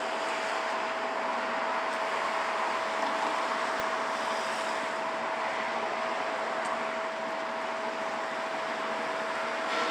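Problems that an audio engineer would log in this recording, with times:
tone 650 Hz -36 dBFS
3.8 pop -17 dBFS

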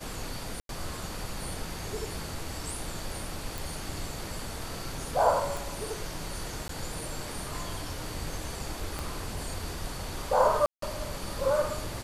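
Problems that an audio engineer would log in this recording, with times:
0.6–0.69 gap 92 ms
3.58 pop
5.57 pop
6.68–6.69 gap 13 ms
8.99 pop
10.66–10.82 gap 0.163 s

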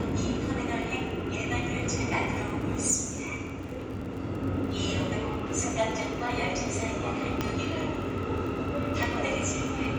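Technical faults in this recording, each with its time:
crackle 26/s -37 dBFS
7.41 pop -14 dBFS
9.03 pop

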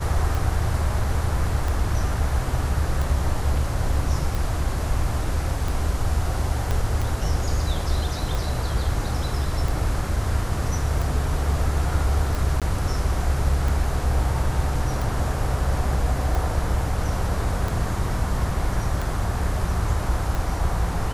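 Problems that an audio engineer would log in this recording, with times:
tick 45 rpm
6.71 pop -12 dBFS
12.6–12.62 gap 17 ms

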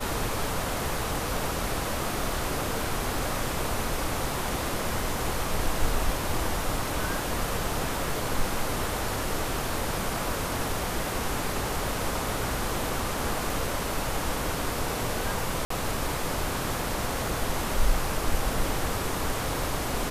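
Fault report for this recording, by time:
15.65–15.7 gap 54 ms

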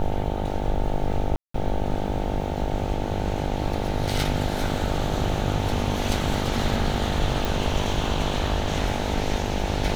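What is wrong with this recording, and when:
buzz 50 Hz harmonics 18 -29 dBFS
1.36–1.54 gap 0.184 s
7.45 pop

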